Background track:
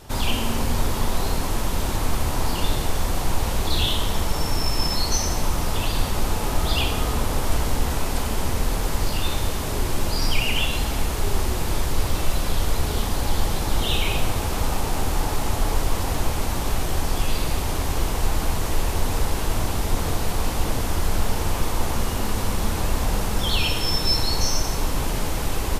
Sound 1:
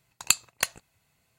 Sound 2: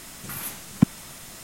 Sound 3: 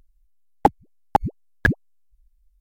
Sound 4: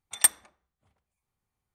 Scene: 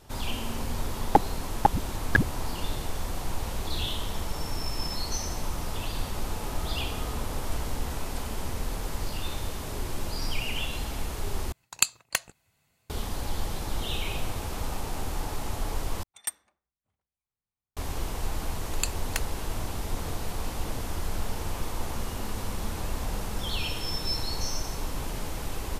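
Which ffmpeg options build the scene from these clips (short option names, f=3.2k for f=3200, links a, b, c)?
-filter_complex "[1:a]asplit=2[a][b];[0:a]volume=-9dB[c];[b]alimiter=level_in=4.5dB:limit=-1dB:release=50:level=0:latency=1[d];[c]asplit=3[e][f][g];[e]atrim=end=11.524[h];[a]atrim=end=1.38,asetpts=PTS-STARTPTS,volume=-1dB[i];[f]atrim=start=12.896:end=16.034[j];[4:a]atrim=end=1.74,asetpts=PTS-STARTPTS,volume=-12.5dB[k];[g]atrim=start=17.766[l];[3:a]atrim=end=2.6,asetpts=PTS-STARTPTS,volume=-3.5dB,afade=t=in:d=0.004:c=hsin,afade=t=out:st=2.596:d=0.004:c=hsin,adelay=500[m];[d]atrim=end=1.38,asetpts=PTS-STARTPTS,volume=-9.5dB,afade=t=in:d=0.004:c=hsin,afade=t=out:st=1.376:d=0.004:c=hsin,adelay=18530[n];[h][i]acrossfade=d=0.004:c1=hsin:c2=hsin[o];[o][j]acrossfade=d=0.004:c1=hsin:c2=hsin[p];[p][k]acrossfade=d=0.004:c1=hsin:c2=hsin[q];[q][l]acrossfade=d=0.004:c1=hsin:c2=hsin[r];[r][m][n]amix=inputs=3:normalize=0"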